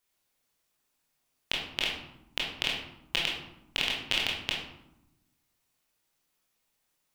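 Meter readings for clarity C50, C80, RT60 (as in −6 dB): 2.5 dB, 6.0 dB, 0.90 s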